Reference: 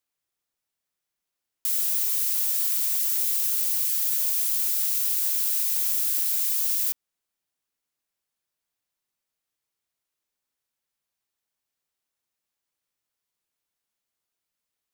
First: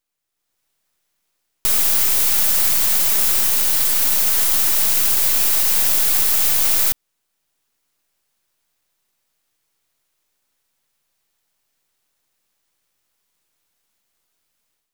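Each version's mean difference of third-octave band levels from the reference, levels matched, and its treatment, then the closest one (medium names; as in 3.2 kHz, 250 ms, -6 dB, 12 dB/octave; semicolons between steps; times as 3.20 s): 11.0 dB: partial rectifier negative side -12 dB; in parallel at +0.5 dB: peak limiter -19.5 dBFS, peak gain reduction 7 dB; on the sum: level rider gain up to 10 dB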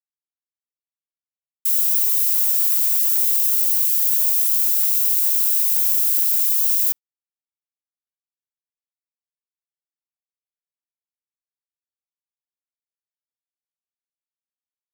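3.0 dB: treble shelf 9.2 kHz +7.5 dB; gate -25 dBFS, range -35 dB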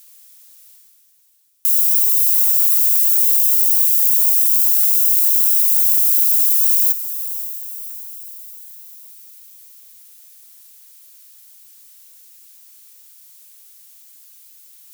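6.0 dB: differentiator; reverse; upward compressor, threshold -26 dBFS; reverse; echo that smears into a reverb 563 ms, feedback 52%, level -11.5 dB; trim +5 dB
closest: second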